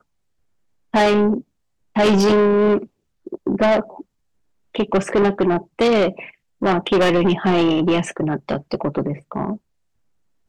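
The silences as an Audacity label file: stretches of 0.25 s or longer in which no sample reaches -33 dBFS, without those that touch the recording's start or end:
1.410000	1.960000	silence
2.850000	3.270000	silence
4.010000	4.750000	silence
6.290000	6.620000	silence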